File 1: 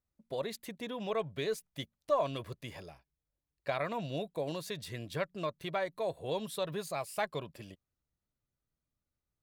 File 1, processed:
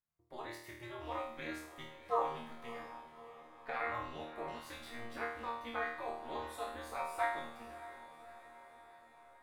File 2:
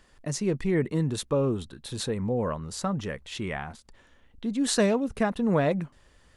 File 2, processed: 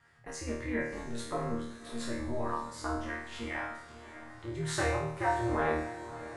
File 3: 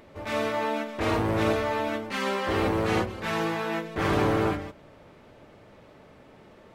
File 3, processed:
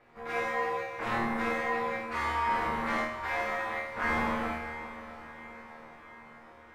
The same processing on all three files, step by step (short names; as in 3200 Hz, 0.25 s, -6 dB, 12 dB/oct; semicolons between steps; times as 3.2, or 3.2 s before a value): band shelf 1300 Hz +9.5 dB; ring modulator 120 Hz; resonator bank D#2 fifth, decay 0.65 s; on a send: diffused feedback echo 0.617 s, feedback 61%, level -14 dB; on the sum: gain +8 dB